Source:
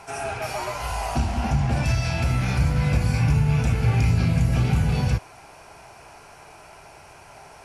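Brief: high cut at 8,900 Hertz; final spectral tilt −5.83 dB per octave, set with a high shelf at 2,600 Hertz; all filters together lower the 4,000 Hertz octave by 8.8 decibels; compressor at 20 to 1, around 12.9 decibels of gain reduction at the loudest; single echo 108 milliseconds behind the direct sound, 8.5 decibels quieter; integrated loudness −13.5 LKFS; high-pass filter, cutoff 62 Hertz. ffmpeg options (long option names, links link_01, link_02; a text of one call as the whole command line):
ffmpeg -i in.wav -af "highpass=62,lowpass=8900,highshelf=frequency=2600:gain=-9,equalizer=frequency=4000:width_type=o:gain=-3.5,acompressor=threshold=-29dB:ratio=20,aecho=1:1:108:0.376,volume=20dB" out.wav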